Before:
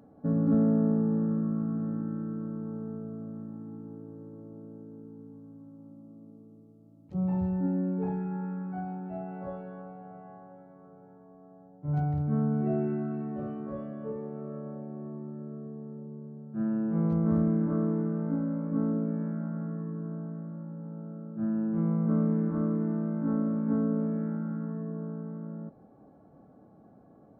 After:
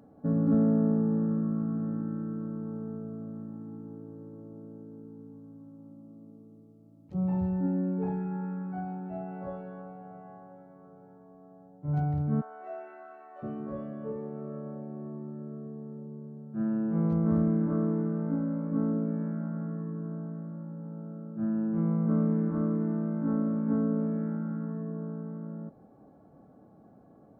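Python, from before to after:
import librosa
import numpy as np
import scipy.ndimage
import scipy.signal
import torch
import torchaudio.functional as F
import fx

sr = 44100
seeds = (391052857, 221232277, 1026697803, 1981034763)

y = fx.highpass(x, sr, hz=640.0, slope=24, at=(12.4, 13.42), fade=0.02)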